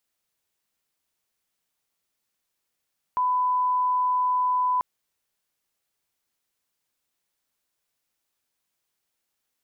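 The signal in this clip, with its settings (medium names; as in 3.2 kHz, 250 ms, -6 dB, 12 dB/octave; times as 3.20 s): line-up tone -20 dBFS 1.64 s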